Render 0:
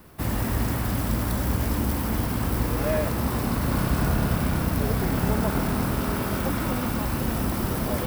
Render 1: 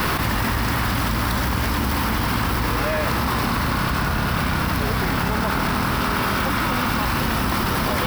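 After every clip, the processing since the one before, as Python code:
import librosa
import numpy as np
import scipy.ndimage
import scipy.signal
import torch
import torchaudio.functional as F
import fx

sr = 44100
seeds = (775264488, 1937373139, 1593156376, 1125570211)

y = fx.band_shelf(x, sr, hz=2200.0, db=9.0, octaves=2.9)
y = fx.env_flatten(y, sr, amount_pct=100)
y = F.gain(torch.from_numpy(y), -2.5).numpy()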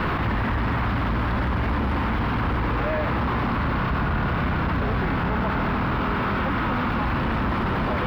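y = np.clip(x, -10.0 ** (-21.5 / 20.0), 10.0 ** (-21.5 / 20.0))
y = fx.air_absorb(y, sr, metres=420.0)
y = np.interp(np.arange(len(y)), np.arange(len(y))[::2], y[::2])
y = F.gain(torch.from_numpy(y), 2.5).numpy()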